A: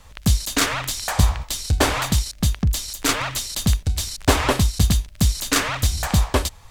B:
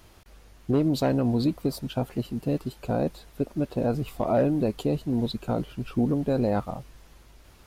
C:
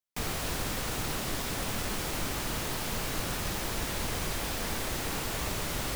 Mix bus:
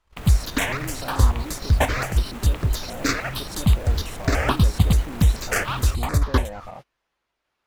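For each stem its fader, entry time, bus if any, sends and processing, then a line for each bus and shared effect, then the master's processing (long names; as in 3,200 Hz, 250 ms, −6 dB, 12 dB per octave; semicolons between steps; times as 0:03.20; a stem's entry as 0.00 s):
+2.5 dB, 0.00 s, no send, square-wave tremolo 3.7 Hz, depth 60%, duty 85%; step-sequenced phaser 6.9 Hz 660–3,100 Hz
−7.0 dB, 0.00 s, no send, tilt shelving filter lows −3 dB, about 790 Hz; brickwall limiter −26.5 dBFS, peak gain reduction 11.5 dB; mid-hump overdrive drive 22 dB, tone 3,400 Hz, clips at −19 dBFS
+2.5 dB, 0.00 s, no send, running median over 9 samples; high-shelf EQ 5,200 Hz +11.5 dB; brickwall limiter −29 dBFS, peak gain reduction 10 dB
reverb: not used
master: noise gate −39 dBFS, range −25 dB; high-shelf EQ 3,500 Hz −7.5 dB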